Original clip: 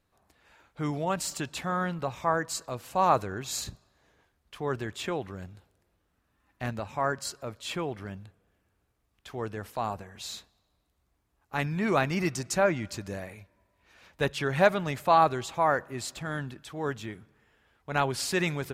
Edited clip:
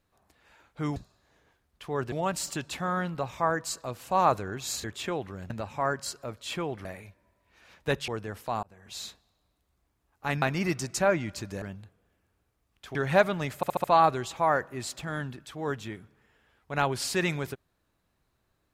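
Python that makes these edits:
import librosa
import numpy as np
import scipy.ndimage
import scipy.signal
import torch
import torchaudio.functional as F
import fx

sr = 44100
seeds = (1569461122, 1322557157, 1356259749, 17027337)

y = fx.edit(x, sr, fx.move(start_s=3.68, length_s=1.16, to_s=0.96),
    fx.cut(start_s=5.5, length_s=1.19),
    fx.swap(start_s=8.04, length_s=1.33, other_s=13.18, other_length_s=1.23),
    fx.fade_in_span(start_s=9.92, length_s=0.35),
    fx.cut(start_s=11.71, length_s=0.27),
    fx.stutter(start_s=15.02, slice_s=0.07, count=5), tone=tone)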